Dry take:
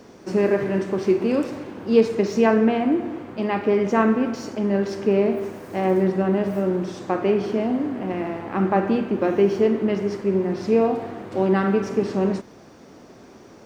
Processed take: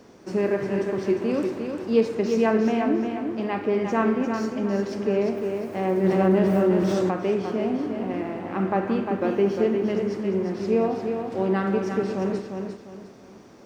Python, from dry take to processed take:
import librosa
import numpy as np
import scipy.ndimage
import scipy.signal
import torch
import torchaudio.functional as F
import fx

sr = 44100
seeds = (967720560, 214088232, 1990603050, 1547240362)

y = fx.echo_feedback(x, sr, ms=352, feedback_pct=32, wet_db=-6.0)
y = fx.env_flatten(y, sr, amount_pct=50, at=(6.03, 7.09), fade=0.02)
y = F.gain(torch.from_numpy(y), -4.0).numpy()